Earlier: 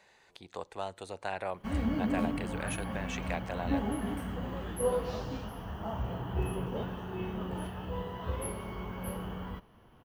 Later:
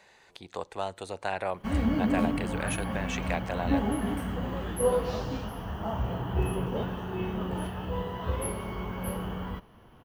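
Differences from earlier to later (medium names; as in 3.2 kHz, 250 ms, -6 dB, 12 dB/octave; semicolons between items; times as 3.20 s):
speech +4.5 dB; background +4.5 dB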